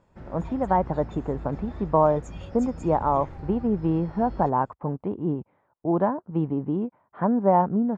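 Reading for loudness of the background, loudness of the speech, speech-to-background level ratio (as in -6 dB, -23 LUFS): -40.5 LUFS, -25.5 LUFS, 15.0 dB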